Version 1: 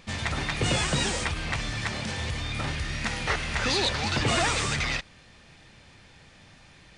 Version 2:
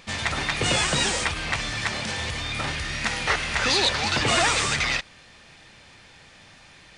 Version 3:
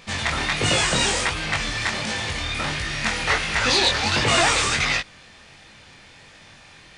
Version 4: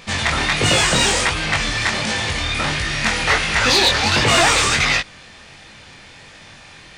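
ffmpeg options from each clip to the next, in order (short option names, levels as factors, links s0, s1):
-af "lowshelf=f=350:g=-7.5,volume=1.78"
-af "flanger=delay=18.5:depth=6.3:speed=1.4,volume=1.88"
-af "asoftclip=type=tanh:threshold=0.282,volume=1.88"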